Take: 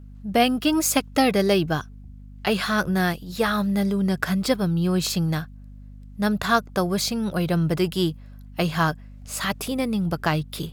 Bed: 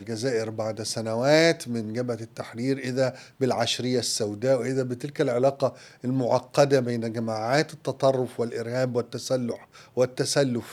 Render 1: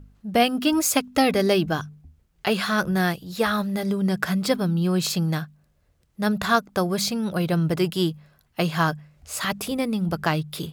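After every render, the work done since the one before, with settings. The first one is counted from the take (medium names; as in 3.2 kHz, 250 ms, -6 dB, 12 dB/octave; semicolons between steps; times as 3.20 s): de-hum 50 Hz, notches 5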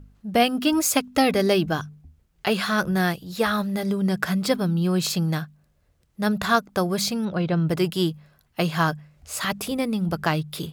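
7.25–7.69 s: distance through air 150 m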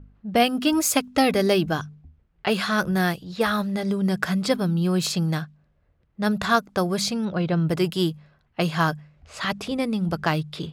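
level-controlled noise filter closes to 2.2 kHz, open at -18.5 dBFS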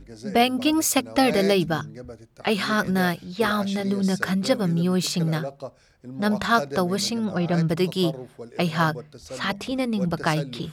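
add bed -11.5 dB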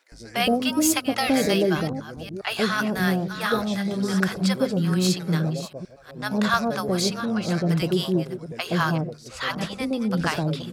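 chunks repeated in reverse 382 ms, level -12 dB; bands offset in time highs, lows 120 ms, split 720 Hz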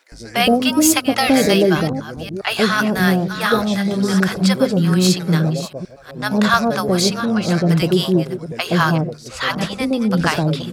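trim +7 dB; peak limiter -2 dBFS, peak gain reduction 3 dB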